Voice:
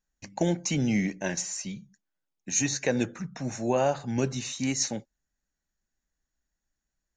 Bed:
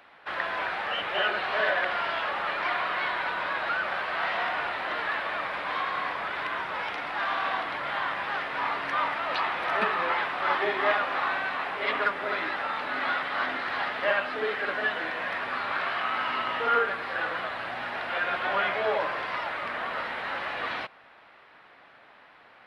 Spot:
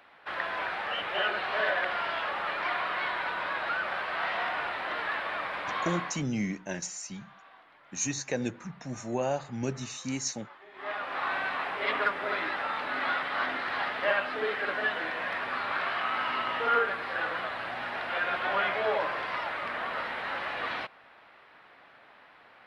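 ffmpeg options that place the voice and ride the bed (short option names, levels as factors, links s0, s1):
-filter_complex "[0:a]adelay=5450,volume=0.562[s0];[1:a]volume=12.6,afade=t=out:st=5.92:d=0.34:silence=0.0668344,afade=t=in:st=10.71:d=0.7:silence=0.0595662[s1];[s0][s1]amix=inputs=2:normalize=0"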